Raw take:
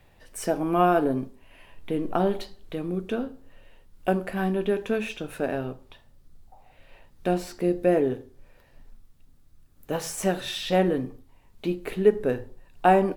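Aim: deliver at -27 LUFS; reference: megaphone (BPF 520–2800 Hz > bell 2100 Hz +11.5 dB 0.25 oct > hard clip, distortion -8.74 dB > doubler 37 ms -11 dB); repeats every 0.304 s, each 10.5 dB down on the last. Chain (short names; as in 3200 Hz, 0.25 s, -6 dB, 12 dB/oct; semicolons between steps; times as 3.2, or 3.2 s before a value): BPF 520–2800 Hz; bell 2100 Hz +11.5 dB 0.25 oct; feedback echo 0.304 s, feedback 30%, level -10.5 dB; hard clip -22 dBFS; doubler 37 ms -11 dB; gain +5.5 dB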